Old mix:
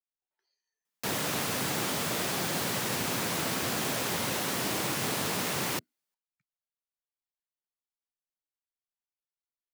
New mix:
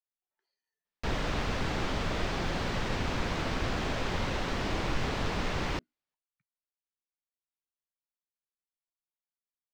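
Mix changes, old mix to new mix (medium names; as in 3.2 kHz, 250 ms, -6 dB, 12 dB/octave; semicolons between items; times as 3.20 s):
background: remove high-pass 120 Hz 24 dB/octave; master: add distance through air 170 m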